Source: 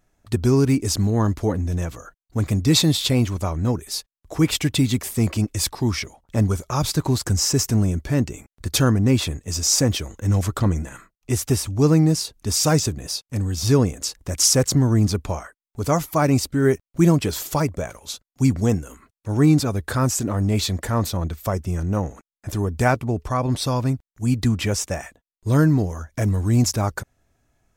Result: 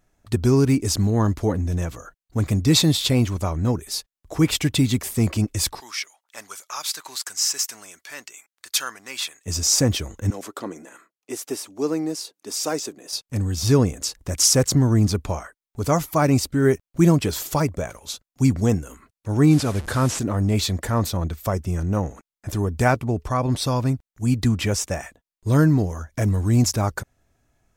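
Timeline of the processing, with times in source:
5.80–9.46 s: high-pass 1.4 kHz
10.30–13.13 s: ladder high-pass 250 Hz, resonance 25%
19.51–20.19 s: one-bit delta coder 64 kbps, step -30 dBFS

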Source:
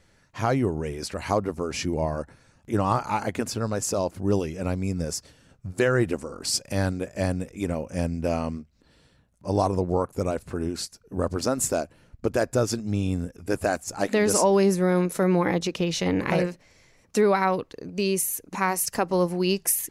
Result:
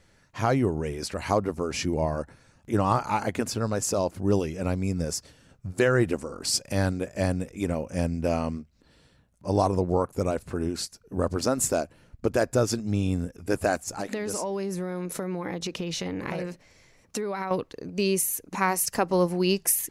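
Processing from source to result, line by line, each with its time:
13.88–17.51 s: compression, threshold -27 dBFS

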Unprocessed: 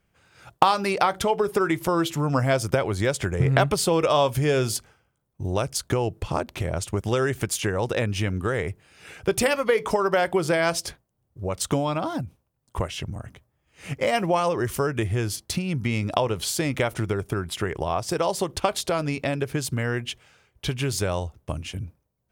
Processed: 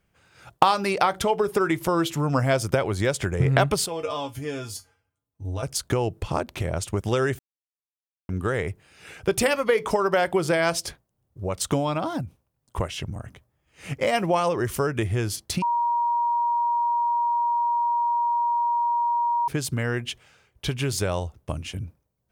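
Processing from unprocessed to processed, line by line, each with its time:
3.86–5.63 s: feedback comb 93 Hz, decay 0.16 s, harmonics odd, mix 90%
7.39–8.29 s: mute
15.62–19.48 s: bleep 948 Hz -20 dBFS

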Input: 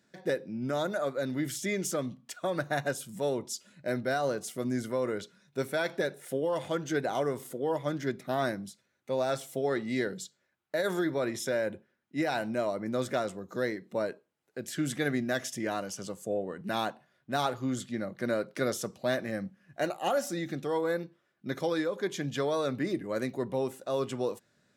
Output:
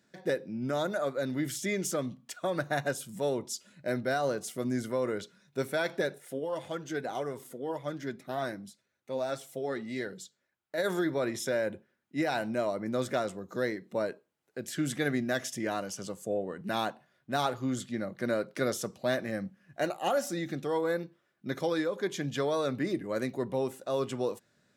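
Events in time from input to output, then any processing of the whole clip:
6.18–10.78 s: flange 1.8 Hz, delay 1.1 ms, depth 3.7 ms, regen +66%

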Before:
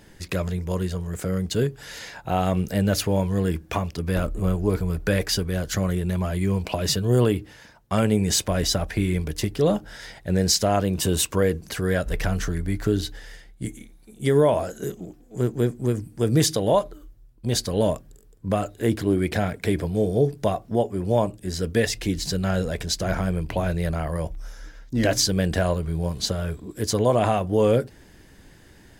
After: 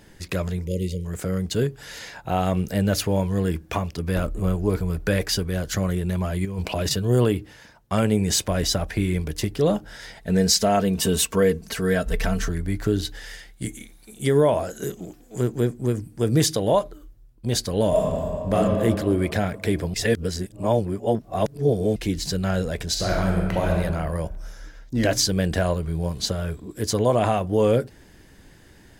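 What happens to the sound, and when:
0.67–1.05 s: spectral selection erased 600–1900 Hz
6.45–6.91 s: compressor with a negative ratio -25 dBFS, ratio -0.5
10.17–12.49 s: comb 4.5 ms, depth 61%
13.05–15.60 s: tape noise reduction on one side only encoder only
17.88–18.54 s: reverb throw, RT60 2.5 s, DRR -7.5 dB
19.94–21.96 s: reverse
22.89–23.75 s: reverb throw, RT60 1.4 s, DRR 0 dB

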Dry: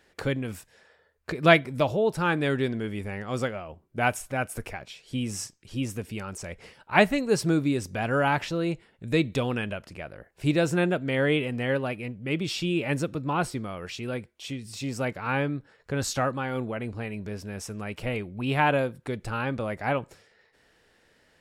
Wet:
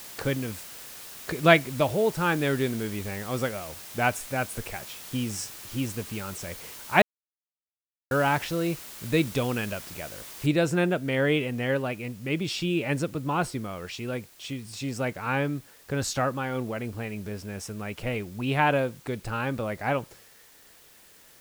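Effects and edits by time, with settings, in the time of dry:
7.02–8.11 s: mute
10.46 s: noise floor step -43 dB -55 dB

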